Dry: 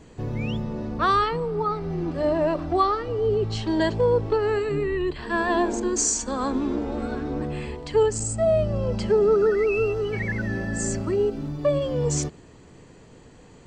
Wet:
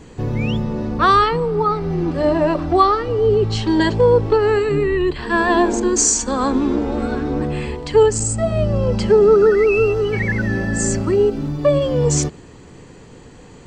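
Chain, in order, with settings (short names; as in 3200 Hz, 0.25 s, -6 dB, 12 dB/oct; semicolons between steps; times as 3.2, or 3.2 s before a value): notch 640 Hz, Q 12; gain +7.5 dB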